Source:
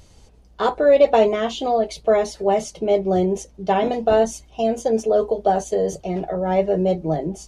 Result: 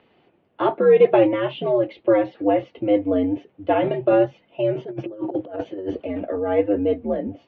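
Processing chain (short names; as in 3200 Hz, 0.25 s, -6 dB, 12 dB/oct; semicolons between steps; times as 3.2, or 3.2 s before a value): 4.75–6.05 negative-ratio compressor -25 dBFS, ratio -0.5; mistuned SSB -95 Hz 270–3100 Hz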